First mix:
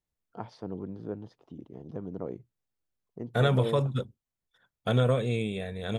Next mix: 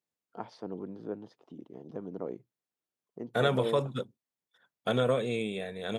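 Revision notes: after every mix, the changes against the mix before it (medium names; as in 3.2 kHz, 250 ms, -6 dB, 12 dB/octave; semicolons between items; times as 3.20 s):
master: add high-pass 210 Hz 12 dB/octave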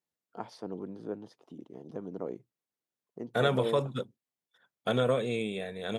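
first voice: remove distance through air 86 m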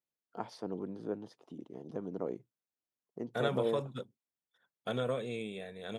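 second voice -7.0 dB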